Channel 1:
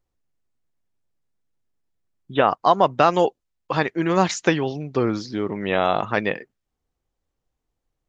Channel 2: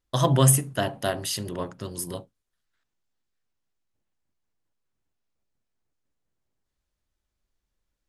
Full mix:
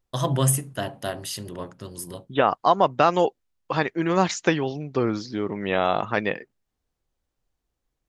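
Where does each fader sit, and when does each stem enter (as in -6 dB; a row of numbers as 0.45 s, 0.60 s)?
-2.0 dB, -3.0 dB; 0.00 s, 0.00 s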